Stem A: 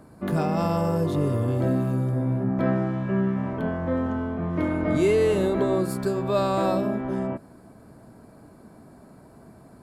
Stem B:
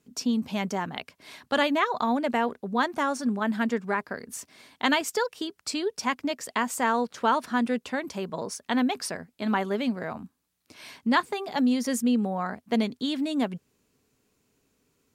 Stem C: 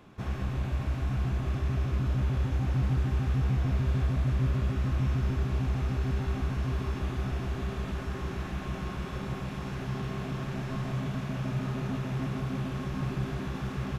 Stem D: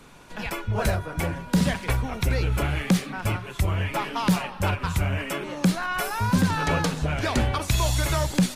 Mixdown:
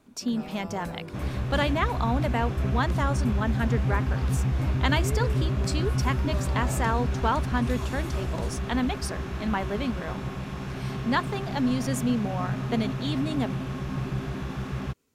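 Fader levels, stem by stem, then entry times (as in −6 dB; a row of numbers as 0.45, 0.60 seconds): −16.0, −2.5, +1.5, −18.0 decibels; 0.00, 0.00, 0.95, 0.00 seconds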